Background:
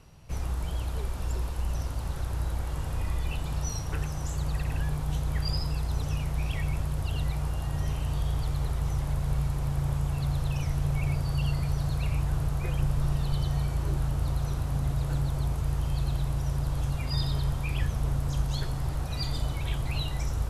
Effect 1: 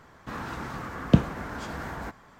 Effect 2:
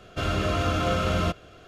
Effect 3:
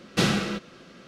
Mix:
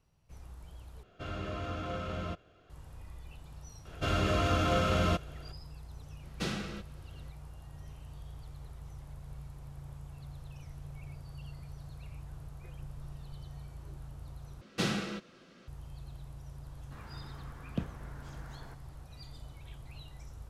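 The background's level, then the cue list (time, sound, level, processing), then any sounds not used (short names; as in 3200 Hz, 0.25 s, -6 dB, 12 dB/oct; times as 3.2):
background -18 dB
1.03 replace with 2 -12.5 dB + high shelf 5000 Hz -10 dB
3.85 add 2 -3.5 dB
6.23 add 3 -13 dB
14.61 replace with 3 -9 dB
16.64 add 1 -16.5 dB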